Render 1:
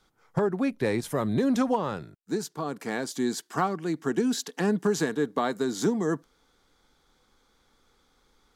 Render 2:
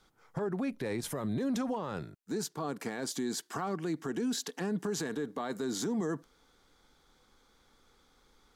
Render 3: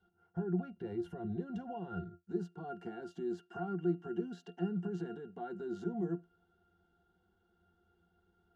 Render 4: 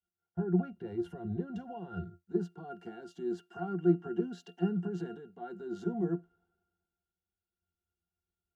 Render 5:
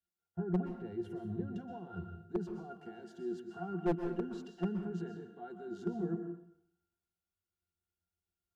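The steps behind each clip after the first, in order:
peak limiter -26 dBFS, peak gain reduction 12 dB
bass shelf 120 Hz -4 dB; pitch-class resonator F, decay 0.15 s; trim +7.5 dB
three bands expanded up and down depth 70%; trim +2.5 dB
one-sided wavefolder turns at -21.5 dBFS; plate-style reverb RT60 0.62 s, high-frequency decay 0.9×, pre-delay 110 ms, DRR 7 dB; trim -4 dB

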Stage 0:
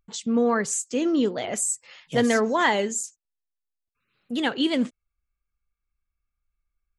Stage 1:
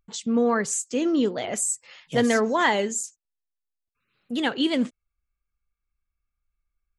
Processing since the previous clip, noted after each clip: no audible change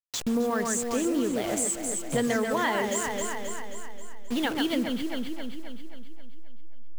send-on-delta sampling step -32.5 dBFS; echo whose repeats swap between lows and highs 133 ms, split 2.4 kHz, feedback 72%, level -5 dB; compression 3:1, threshold -28 dBFS, peak gain reduction 9.5 dB; trim +2.5 dB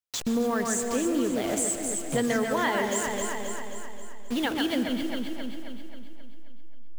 reverberation RT60 1.8 s, pre-delay 113 ms, DRR 10 dB

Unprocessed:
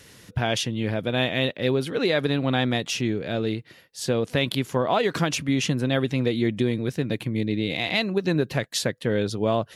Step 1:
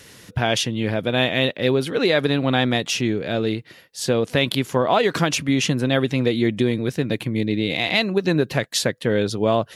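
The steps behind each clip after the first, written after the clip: bass shelf 170 Hz -3.5 dB; trim +4.5 dB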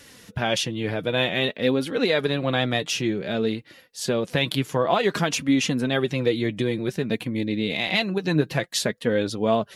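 flange 0.54 Hz, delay 3.4 ms, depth 3.5 ms, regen +41%; trim +1 dB

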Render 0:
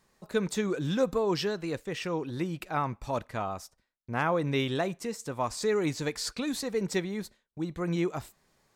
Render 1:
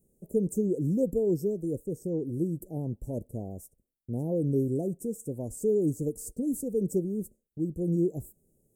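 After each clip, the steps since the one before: inverse Chebyshev band-stop 1.2–3.8 kHz, stop band 60 dB; treble shelf 12 kHz +3.5 dB; trim +3 dB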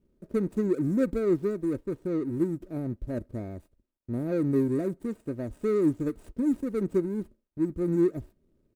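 median filter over 41 samples; comb 3.2 ms, depth 42%; trim +2 dB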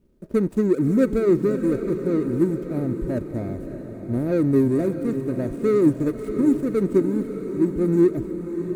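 echo that smears into a reverb 618 ms, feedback 55%, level -9 dB; trim +6.5 dB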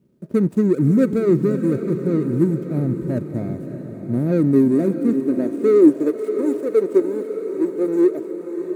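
high-pass sweep 140 Hz -> 450 Hz, 4.00–6.47 s

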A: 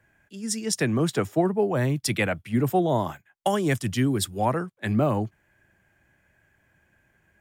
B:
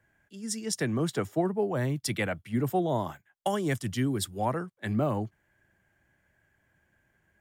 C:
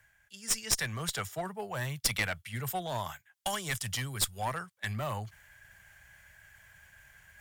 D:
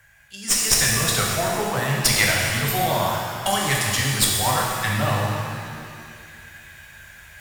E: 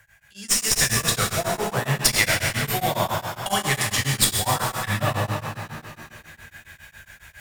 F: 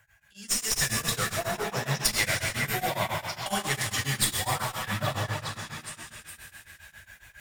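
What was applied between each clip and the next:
band-stop 2.5 kHz, Q 15; trim -5 dB
amplifier tone stack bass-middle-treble 10-0-10; reverse; upward compressor, threshold -54 dBFS; reverse; one-sided clip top -39 dBFS; trim +8.5 dB
pitch-shifted reverb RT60 2.1 s, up +7 st, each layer -8 dB, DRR -3 dB; trim +8.5 dB
tremolo of two beating tones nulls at 7.3 Hz; trim +1 dB
coarse spectral quantiser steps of 15 dB; flange 1.3 Hz, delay 0.8 ms, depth 5.8 ms, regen -72%; repeats whose band climbs or falls 413 ms, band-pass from 1.7 kHz, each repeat 0.7 oct, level -4.5 dB; trim -1.5 dB

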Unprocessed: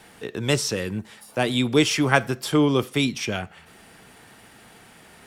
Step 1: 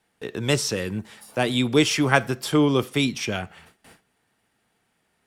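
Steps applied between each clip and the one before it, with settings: gate with hold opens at -38 dBFS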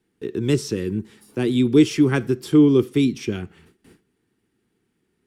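resonant low shelf 480 Hz +8.5 dB, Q 3; trim -6.5 dB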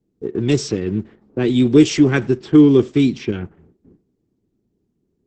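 level-controlled noise filter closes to 370 Hz, open at -16 dBFS; trim +4 dB; Opus 10 kbps 48 kHz

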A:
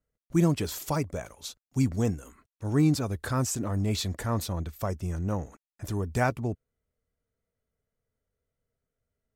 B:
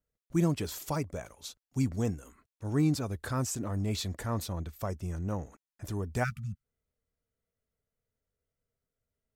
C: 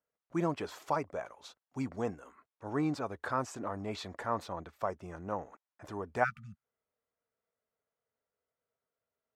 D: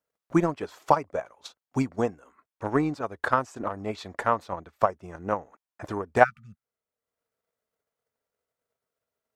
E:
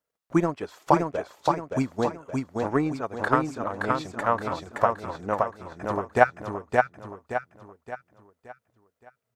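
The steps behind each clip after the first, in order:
spectral selection erased 6.24–6.63 s, 220–1200 Hz; trim -4 dB
band-pass filter 950 Hz, Q 1; trim +5.5 dB
transient shaper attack +11 dB, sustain -5 dB; trim +3 dB
feedback delay 571 ms, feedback 41%, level -3 dB

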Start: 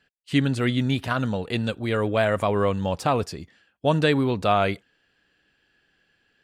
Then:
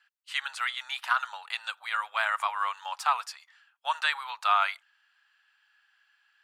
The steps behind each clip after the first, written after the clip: elliptic high-pass 860 Hz, stop band 60 dB; peaking EQ 1.3 kHz +6.5 dB 0.48 oct; trim -1.5 dB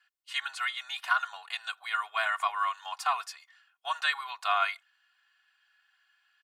comb 2.8 ms, depth 99%; trim -4 dB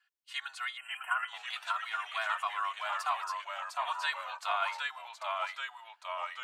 ever faster or slower copies 525 ms, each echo -1 st, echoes 3; spectral selection erased 0.77–1.28 s, 3.2–7.5 kHz; trim -5.5 dB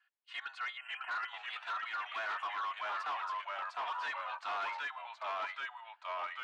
hard clipper -35 dBFS, distortion -7 dB; band-pass 450–2800 Hz; trim +1 dB

